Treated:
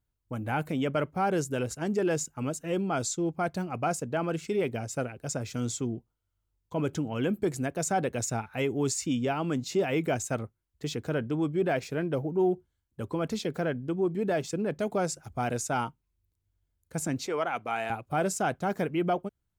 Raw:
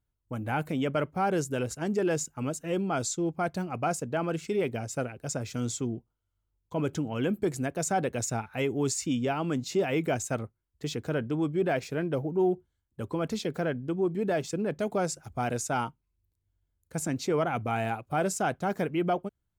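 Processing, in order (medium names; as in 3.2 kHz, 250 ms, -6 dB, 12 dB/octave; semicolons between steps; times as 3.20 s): 17.27–17.90 s: frequency weighting A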